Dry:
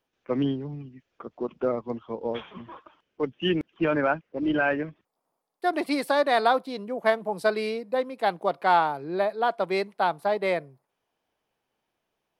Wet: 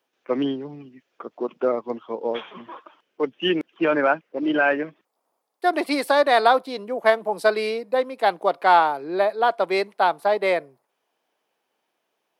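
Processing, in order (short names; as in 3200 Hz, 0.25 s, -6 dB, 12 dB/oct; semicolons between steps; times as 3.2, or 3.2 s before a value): HPF 290 Hz 12 dB/oct; gain +5 dB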